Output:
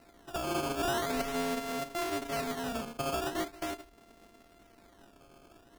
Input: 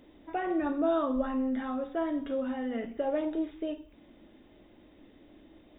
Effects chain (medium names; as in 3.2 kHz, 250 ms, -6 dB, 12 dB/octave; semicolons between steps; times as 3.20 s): sorted samples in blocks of 64 samples; in parallel at -2 dB: peak limiter -25 dBFS, peak gain reduction 8 dB; on the sum: decimation with a swept rate 13×, swing 160% 0.42 Hz; trim -7.5 dB